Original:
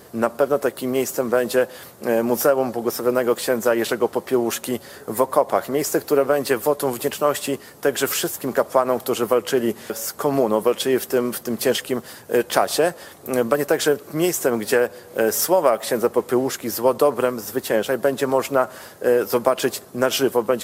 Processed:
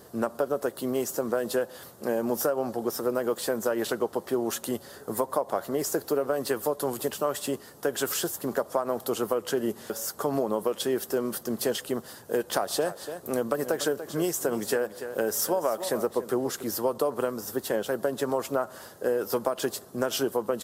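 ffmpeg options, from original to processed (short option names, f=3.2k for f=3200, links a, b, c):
-filter_complex "[0:a]asplit=3[a][b][c];[a]afade=t=out:st=12.7:d=0.02[d];[b]aecho=1:1:289:0.211,afade=t=in:st=12.7:d=0.02,afade=t=out:st=16.62:d=0.02[e];[c]afade=t=in:st=16.62:d=0.02[f];[d][e][f]amix=inputs=3:normalize=0,equalizer=f=2.3k:t=o:w=0.54:g=-8,acompressor=threshold=-18dB:ratio=3,volume=-5dB"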